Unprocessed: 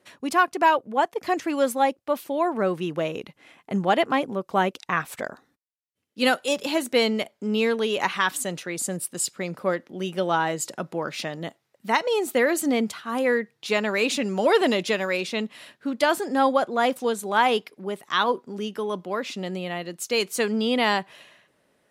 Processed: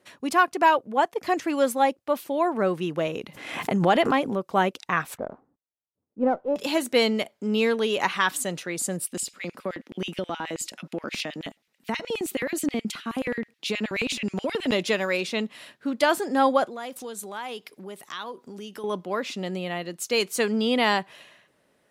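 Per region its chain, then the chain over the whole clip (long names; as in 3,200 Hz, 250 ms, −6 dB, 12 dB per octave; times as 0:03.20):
0:03.07–0:04.49: high-pass filter 59 Hz + background raised ahead of every attack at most 57 dB per second
0:05.17–0:06.56: low-pass filter 1,000 Hz 24 dB per octave + windowed peak hold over 3 samples
0:09.07–0:14.72: downward compressor 3 to 1, threshold −28 dBFS + auto-filter high-pass square 9.4 Hz 220–2,500 Hz
0:16.66–0:18.84: downward compressor 2.5 to 1, threshold −39 dBFS + high-shelf EQ 3,900 Hz +7.5 dB
whole clip: no processing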